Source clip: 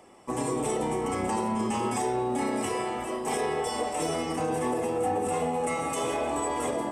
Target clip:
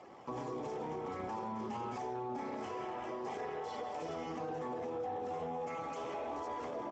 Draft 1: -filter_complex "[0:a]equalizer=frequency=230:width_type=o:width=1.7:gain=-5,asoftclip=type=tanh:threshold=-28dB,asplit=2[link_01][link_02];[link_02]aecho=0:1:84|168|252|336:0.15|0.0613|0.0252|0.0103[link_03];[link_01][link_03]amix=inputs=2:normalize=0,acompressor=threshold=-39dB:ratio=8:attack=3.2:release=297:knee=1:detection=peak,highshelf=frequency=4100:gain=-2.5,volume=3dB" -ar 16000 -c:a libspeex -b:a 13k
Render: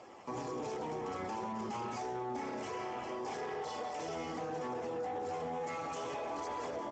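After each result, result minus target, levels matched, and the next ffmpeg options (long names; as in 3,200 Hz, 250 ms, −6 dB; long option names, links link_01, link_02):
8,000 Hz band +7.0 dB; soft clipping: distortion +8 dB
-filter_complex "[0:a]equalizer=frequency=230:width_type=o:width=1.7:gain=-5,asoftclip=type=tanh:threshold=-28dB,asplit=2[link_01][link_02];[link_02]aecho=0:1:84|168|252|336:0.15|0.0613|0.0252|0.0103[link_03];[link_01][link_03]amix=inputs=2:normalize=0,acompressor=threshold=-39dB:ratio=8:attack=3.2:release=297:knee=1:detection=peak,highshelf=frequency=4100:gain=-11.5,volume=3dB" -ar 16000 -c:a libspeex -b:a 13k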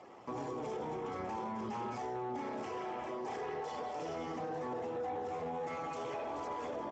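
soft clipping: distortion +8 dB
-filter_complex "[0:a]equalizer=frequency=230:width_type=o:width=1.7:gain=-5,asoftclip=type=tanh:threshold=-22dB,asplit=2[link_01][link_02];[link_02]aecho=0:1:84|168|252|336:0.15|0.0613|0.0252|0.0103[link_03];[link_01][link_03]amix=inputs=2:normalize=0,acompressor=threshold=-39dB:ratio=8:attack=3.2:release=297:knee=1:detection=peak,highshelf=frequency=4100:gain=-11.5,volume=3dB" -ar 16000 -c:a libspeex -b:a 13k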